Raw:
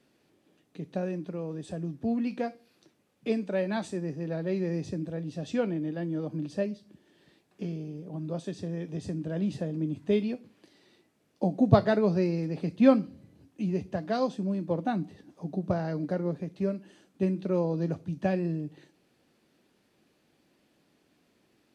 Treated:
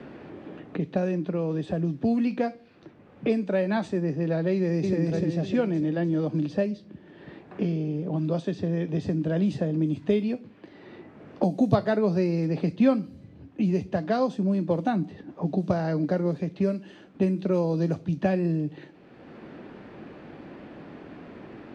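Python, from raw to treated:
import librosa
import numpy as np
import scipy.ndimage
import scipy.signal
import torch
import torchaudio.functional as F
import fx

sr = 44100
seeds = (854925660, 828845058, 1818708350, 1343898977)

y = fx.echo_throw(x, sr, start_s=4.53, length_s=0.47, ms=300, feedback_pct=50, wet_db=-2.0)
y = fx.env_lowpass(y, sr, base_hz=1800.0, full_db=-23.0)
y = fx.band_squash(y, sr, depth_pct=70)
y = y * librosa.db_to_amplitude(4.5)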